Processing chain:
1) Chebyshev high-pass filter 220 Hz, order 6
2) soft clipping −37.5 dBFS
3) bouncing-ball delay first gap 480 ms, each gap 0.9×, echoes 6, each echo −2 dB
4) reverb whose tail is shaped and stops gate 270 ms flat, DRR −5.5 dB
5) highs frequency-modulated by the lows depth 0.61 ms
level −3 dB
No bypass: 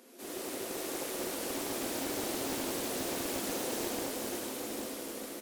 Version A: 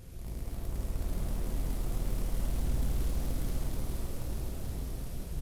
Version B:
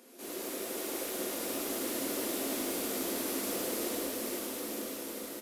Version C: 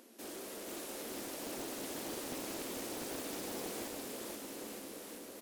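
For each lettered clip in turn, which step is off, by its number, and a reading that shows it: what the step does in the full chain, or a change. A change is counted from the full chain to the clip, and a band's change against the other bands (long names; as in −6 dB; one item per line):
1, 125 Hz band +27.0 dB
5, 125 Hz band −4.5 dB
4, change in integrated loudness −6.5 LU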